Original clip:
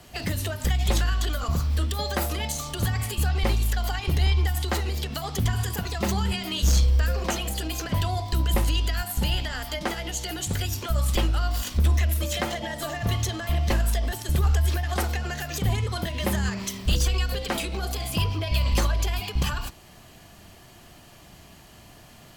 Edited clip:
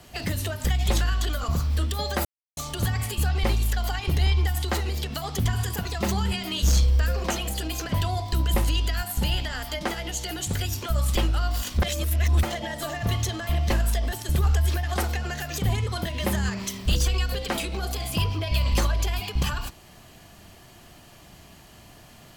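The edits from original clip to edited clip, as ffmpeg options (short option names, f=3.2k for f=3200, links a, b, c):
-filter_complex "[0:a]asplit=5[a][b][c][d][e];[a]atrim=end=2.25,asetpts=PTS-STARTPTS,afade=t=out:st=2.246:d=0.004:c=hsin[f];[b]atrim=start=2.25:end=2.57,asetpts=PTS-STARTPTS,volume=0[g];[c]atrim=start=2.57:end=11.822,asetpts=PTS-STARTPTS,afade=t=in:d=0.004:c=hsin[h];[d]atrim=start=11.818:end=12.432,asetpts=PTS-STARTPTS,areverse[i];[e]atrim=start=12.428[j];[f][g][h]concat=n=3:v=0:a=1[k];[k][i]acrossfade=d=0.004:c1=hsin:c2=hsin[l];[l][j]acrossfade=d=0.004:c1=hsin:c2=hsin"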